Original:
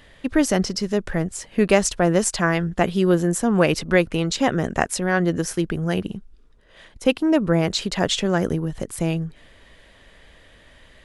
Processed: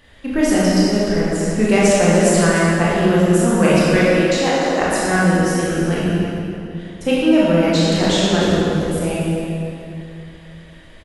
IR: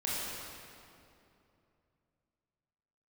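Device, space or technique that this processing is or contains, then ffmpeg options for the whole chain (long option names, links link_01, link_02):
cave: -filter_complex "[0:a]asettb=1/sr,asplit=3[link_01][link_02][link_03];[link_01]atrim=end=3.994[link_04];[link_02]atrim=start=3.99:end=4.81,asetpts=PTS-STARTPTS,afade=type=in:duration=0.004:curve=qsin,afade=type=out:start_time=0.816:duration=0.004:curve=qsin,highpass=frequency=280:width=0.5412,highpass=frequency=280:width=1.3066[link_05];[link_03]atrim=start=4.806[link_06];[link_04][link_05]acrossfade=duration=0.004:curve1=hsin:curve2=qsin[link_07];[link_07][link_06]acrossfade=duration=0.004:curve1=qsin:curve2=hsin,aecho=1:1:299:0.237[link_08];[1:a]atrim=start_sample=2205[link_09];[link_08][link_09]afir=irnorm=-1:irlink=0,volume=-1dB"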